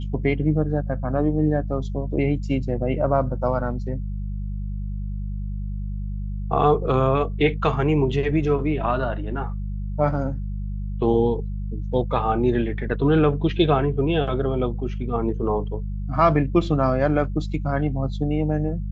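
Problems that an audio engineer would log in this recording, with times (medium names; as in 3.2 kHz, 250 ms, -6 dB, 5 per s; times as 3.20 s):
hum 50 Hz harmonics 4 -28 dBFS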